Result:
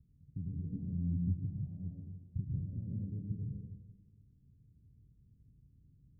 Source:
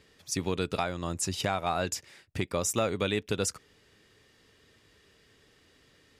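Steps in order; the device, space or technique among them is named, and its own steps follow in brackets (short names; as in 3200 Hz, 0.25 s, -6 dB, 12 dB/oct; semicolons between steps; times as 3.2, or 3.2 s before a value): club heard from the street (limiter -25.5 dBFS, peak gain reduction 10.5 dB; LPF 170 Hz 24 dB/oct; reverb RT60 1.3 s, pre-delay 0.104 s, DRR -2 dB); 0.68–1.34 dynamic EQ 230 Hz, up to +7 dB, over -57 dBFS, Q 1.4; gain +3 dB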